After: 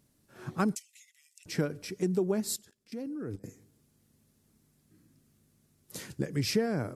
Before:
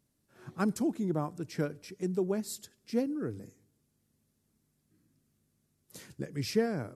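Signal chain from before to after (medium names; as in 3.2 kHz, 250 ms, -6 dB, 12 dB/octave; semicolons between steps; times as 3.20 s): compression 3:1, threshold -33 dBFS, peak gain reduction 8.5 dB; 0.75–1.46 s: rippled Chebyshev high-pass 1.9 kHz, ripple 6 dB; 2.56–3.44 s: level held to a coarse grid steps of 22 dB; trim +7 dB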